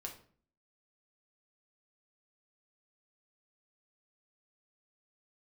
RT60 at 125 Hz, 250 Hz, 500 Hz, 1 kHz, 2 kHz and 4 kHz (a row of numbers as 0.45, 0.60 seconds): 0.65, 0.65, 0.50, 0.45, 0.40, 0.35 seconds